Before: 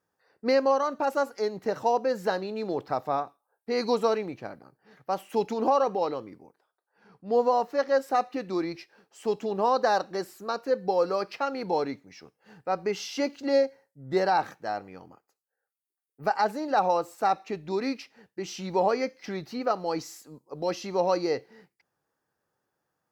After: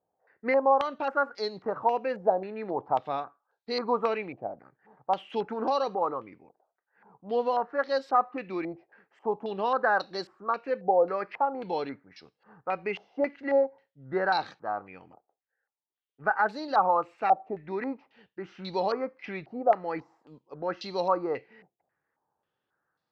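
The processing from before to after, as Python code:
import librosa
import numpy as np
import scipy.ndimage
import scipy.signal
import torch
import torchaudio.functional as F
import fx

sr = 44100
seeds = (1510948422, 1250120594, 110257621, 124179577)

y = fx.filter_held_lowpass(x, sr, hz=3.7, low_hz=710.0, high_hz=4100.0)
y = y * librosa.db_to_amplitude(-4.5)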